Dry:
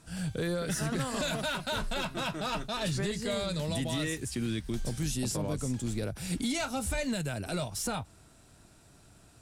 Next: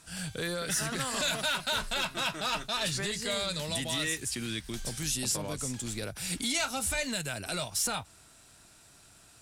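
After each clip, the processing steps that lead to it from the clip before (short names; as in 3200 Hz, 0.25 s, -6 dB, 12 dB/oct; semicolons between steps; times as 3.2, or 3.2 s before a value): tilt shelf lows -6 dB, about 830 Hz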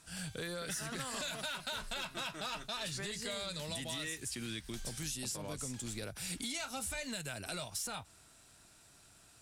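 compressor, threshold -32 dBFS, peak gain reduction 6.5 dB; gain -4.5 dB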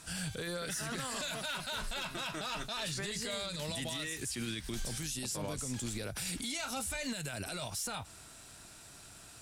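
limiter -37.5 dBFS, peak gain reduction 11 dB; gain +8.5 dB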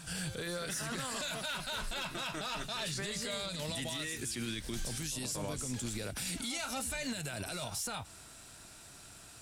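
pre-echo 0.23 s -14 dB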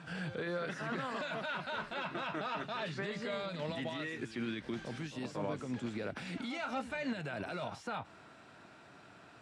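BPF 170–2000 Hz; gain +3 dB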